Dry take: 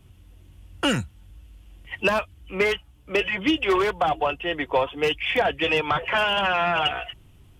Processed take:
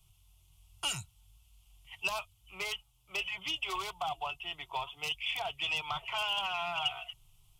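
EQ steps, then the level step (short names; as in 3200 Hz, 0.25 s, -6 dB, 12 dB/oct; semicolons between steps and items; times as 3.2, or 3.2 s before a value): passive tone stack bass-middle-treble 10-0-10; fixed phaser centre 340 Hz, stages 8; 0.0 dB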